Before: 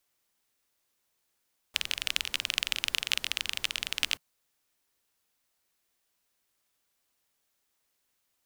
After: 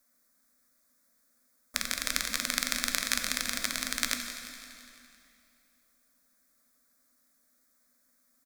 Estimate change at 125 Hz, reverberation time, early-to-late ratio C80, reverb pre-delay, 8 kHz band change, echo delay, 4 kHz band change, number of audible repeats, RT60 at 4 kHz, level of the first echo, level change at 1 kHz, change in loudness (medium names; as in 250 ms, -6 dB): +2.0 dB, 2.7 s, 6.0 dB, 10 ms, +6.5 dB, 169 ms, -3.0 dB, 5, 2.4 s, -13.0 dB, +6.5 dB, 0.0 dB